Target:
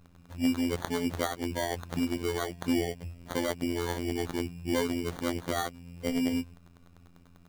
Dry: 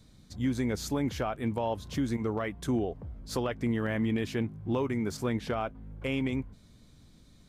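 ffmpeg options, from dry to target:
ffmpeg -i in.wav -af "afftfilt=real='hypot(re,im)*cos(PI*b)':imag='0':win_size=2048:overlap=0.75,acrusher=samples=17:mix=1:aa=0.000001,volume=4dB" out.wav

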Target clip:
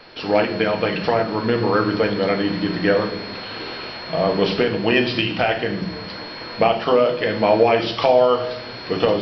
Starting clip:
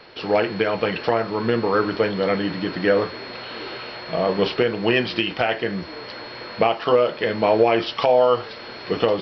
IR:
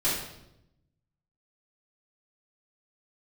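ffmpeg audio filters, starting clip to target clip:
-filter_complex "[0:a]asplit=2[link_01][link_02];[link_02]bass=frequency=250:gain=8,treble=frequency=4000:gain=10[link_03];[1:a]atrim=start_sample=2205[link_04];[link_03][link_04]afir=irnorm=-1:irlink=0,volume=-17dB[link_05];[link_01][link_05]amix=inputs=2:normalize=0"

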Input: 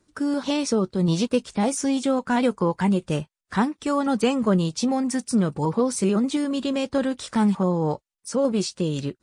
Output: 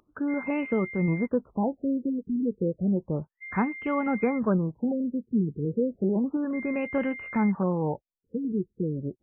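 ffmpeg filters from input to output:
ffmpeg -i in.wav -af "highshelf=frequency=5800:width_type=q:width=3:gain=13,aeval=exprs='val(0)+0.0224*sin(2*PI*2100*n/s)':channel_layout=same,afftfilt=real='re*lt(b*sr/1024,460*pow(3200/460,0.5+0.5*sin(2*PI*0.32*pts/sr)))':imag='im*lt(b*sr/1024,460*pow(3200/460,0.5+0.5*sin(2*PI*0.32*pts/sr)))':win_size=1024:overlap=0.75,volume=-4dB" out.wav

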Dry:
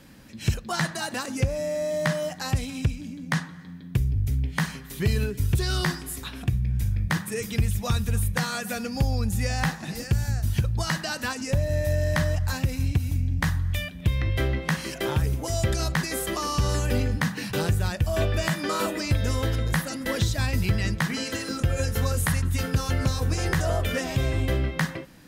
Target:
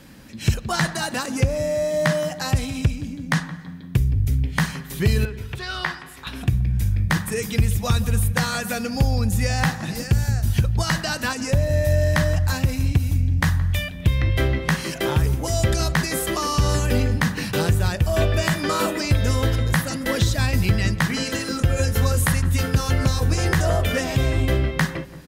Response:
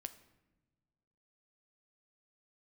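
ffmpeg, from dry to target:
-filter_complex "[0:a]asettb=1/sr,asplit=3[link_01][link_02][link_03];[link_01]atrim=end=5.254[link_04];[link_02]atrim=start=5.25:end=6.27,asetpts=PTS-STARTPTS,afade=type=in:duration=0.004:curve=qsin,afade=type=out:start_time=1.016:duration=0.004:curve=qsin,acrossover=split=580 3800:gain=0.178 1 0.141[link_05][link_06][link_07];[link_05][link_06][link_07]amix=inputs=3:normalize=0[link_08];[link_03]atrim=start=6.266[link_09];[link_04][link_08]acrossfade=duration=0.004:curve1=hsin:curve2=qsin[link_10];[link_10][link_09]acrossfade=duration=0.004:curve1=qsin:curve2=hsin,asplit=2[link_11][link_12];[link_12]adelay=171,lowpass=frequency=1200:poles=1,volume=-15dB,asplit=2[link_13][link_14];[link_14]adelay=171,lowpass=frequency=1200:poles=1,volume=0.49,asplit=2[link_15][link_16];[link_16]adelay=171,lowpass=frequency=1200:poles=1,volume=0.49,asplit=2[link_17][link_18];[link_18]adelay=171,lowpass=frequency=1200:poles=1,volume=0.49,asplit=2[link_19][link_20];[link_20]adelay=171,lowpass=frequency=1200:poles=1,volume=0.49[link_21];[link_11][link_13][link_15][link_17][link_19][link_21]amix=inputs=6:normalize=0,volume=4.5dB"

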